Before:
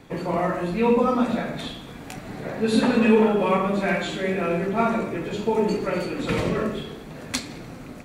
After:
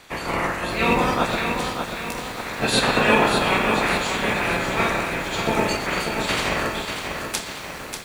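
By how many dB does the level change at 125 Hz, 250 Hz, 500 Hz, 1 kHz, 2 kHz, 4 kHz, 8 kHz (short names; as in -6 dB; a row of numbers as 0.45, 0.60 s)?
0.0, -3.5, -2.0, +4.5, +8.5, +9.5, +9.0 dB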